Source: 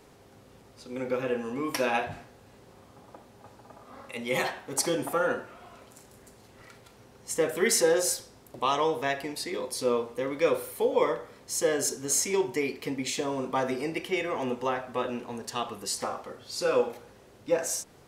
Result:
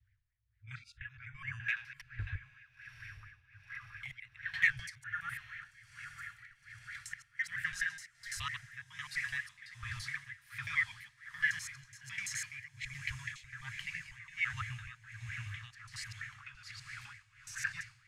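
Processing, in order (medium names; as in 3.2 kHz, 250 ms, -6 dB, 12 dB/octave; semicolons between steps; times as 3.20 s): slices played last to first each 84 ms, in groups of 4; Chebyshev band-stop 110–1700 Hz, order 4; RIAA curve playback; spectral noise reduction 29 dB; peaking EQ 460 Hz +6 dB 2.8 oct; compression 1.5:1, threshold -59 dBFS, peak gain reduction 11 dB; hard clipper -36 dBFS, distortion -26 dB; echo that smears into a reverb 1008 ms, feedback 72%, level -12.5 dB; tremolo 1.3 Hz, depth 83%; sweeping bell 4.4 Hz 660–2100 Hz +16 dB; trim +5.5 dB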